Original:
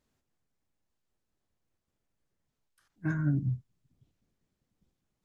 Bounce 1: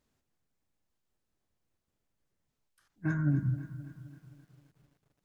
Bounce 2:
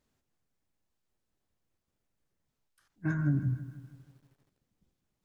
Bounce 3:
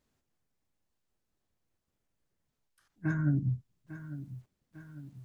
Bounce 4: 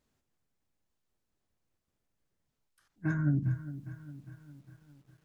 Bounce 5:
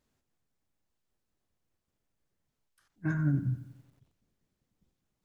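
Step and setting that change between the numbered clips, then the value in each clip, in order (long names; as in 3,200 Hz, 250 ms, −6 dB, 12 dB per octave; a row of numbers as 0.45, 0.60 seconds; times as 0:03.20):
feedback echo at a low word length, delay time: 263, 158, 850, 406, 90 milliseconds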